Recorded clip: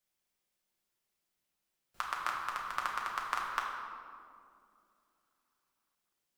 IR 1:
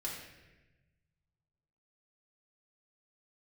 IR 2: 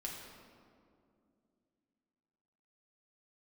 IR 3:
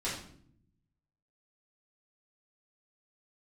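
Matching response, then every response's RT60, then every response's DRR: 2; 1.1 s, 2.5 s, 0.60 s; -5.0 dB, -2.5 dB, -9.0 dB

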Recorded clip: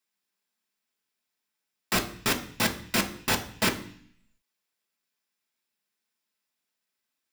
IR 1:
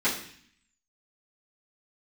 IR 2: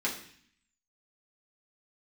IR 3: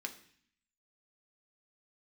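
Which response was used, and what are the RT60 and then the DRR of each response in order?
3; 0.55 s, 0.55 s, 0.55 s; -12.0 dB, -5.0 dB, 4.0 dB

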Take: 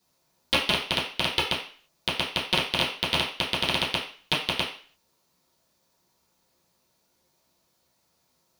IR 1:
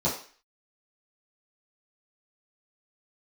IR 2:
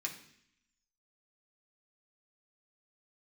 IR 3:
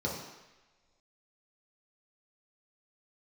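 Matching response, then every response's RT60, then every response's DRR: 1; 0.40 s, 0.65 s, no single decay rate; -10.0 dB, -1.5 dB, -4.5 dB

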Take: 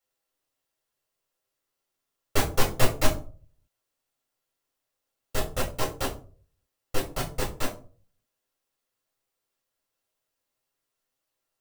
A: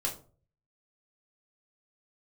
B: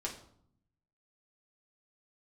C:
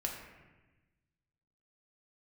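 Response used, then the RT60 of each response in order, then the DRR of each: A; 0.40 s, 0.65 s, 1.2 s; -3.0 dB, -2.5 dB, -0.5 dB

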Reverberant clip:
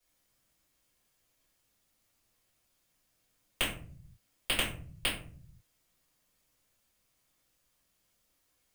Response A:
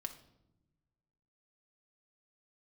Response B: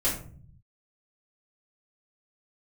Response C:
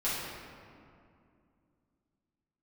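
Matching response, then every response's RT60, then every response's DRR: B; no single decay rate, 0.50 s, 2.4 s; 4.5 dB, -9.5 dB, -10.5 dB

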